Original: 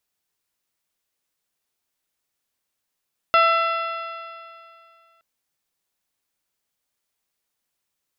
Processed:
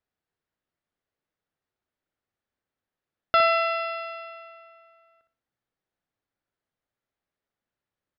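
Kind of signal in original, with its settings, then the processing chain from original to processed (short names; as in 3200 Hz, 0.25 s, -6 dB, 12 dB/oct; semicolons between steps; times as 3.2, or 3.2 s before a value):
stretched partials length 1.87 s, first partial 663 Hz, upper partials 6/-6.5/-2.5/-10/-17/-18.5 dB, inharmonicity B 0.0028, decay 2.40 s, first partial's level -19 dB
low-pass opened by the level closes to 2100 Hz, open at -25.5 dBFS; fifteen-band EQ 100 Hz +3 dB, 1000 Hz -5 dB, 2500 Hz -5 dB; on a send: feedback echo 62 ms, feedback 27%, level -8.5 dB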